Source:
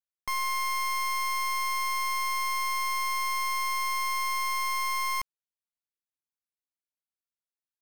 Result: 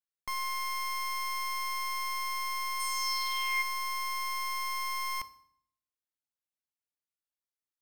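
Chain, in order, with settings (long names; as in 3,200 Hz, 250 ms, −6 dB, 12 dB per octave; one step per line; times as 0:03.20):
0:02.79–0:03.61: parametric band 9,400 Hz → 2,100 Hz +12 dB 0.64 octaves
feedback delay network reverb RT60 0.64 s, low-frequency decay 1.3×, high-frequency decay 0.85×, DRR 12.5 dB
level −4.5 dB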